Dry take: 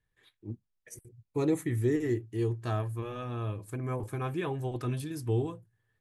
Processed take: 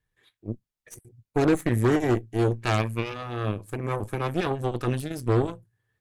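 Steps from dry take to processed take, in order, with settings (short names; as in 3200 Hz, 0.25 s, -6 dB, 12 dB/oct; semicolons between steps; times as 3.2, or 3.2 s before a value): 2.58–3.14 bell 2300 Hz +14 dB 0.64 oct; added harmonics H 5 -24 dB, 6 -15 dB, 7 -20 dB, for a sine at -17.5 dBFS; gain +5.5 dB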